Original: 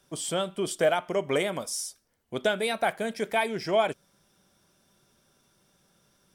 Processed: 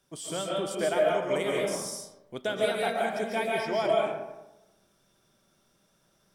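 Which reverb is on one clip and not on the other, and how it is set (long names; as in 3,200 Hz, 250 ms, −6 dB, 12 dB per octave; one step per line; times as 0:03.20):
comb and all-pass reverb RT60 1 s, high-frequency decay 0.5×, pre-delay 100 ms, DRR −3 dB
level −6 dB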